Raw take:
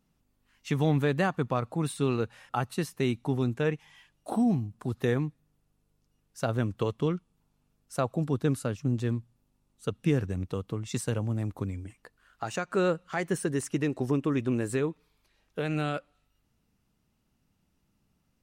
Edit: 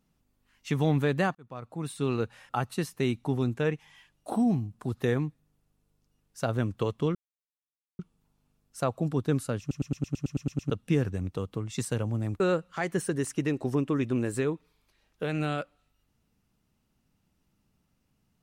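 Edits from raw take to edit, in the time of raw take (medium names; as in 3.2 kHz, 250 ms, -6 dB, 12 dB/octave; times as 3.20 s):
1.35–2.20 s: fade in linear
7.15 s: insert silence 0.84 s
8.76 s: stutter in place 0.11 s, 10 plays
11.56–12.76 s: delete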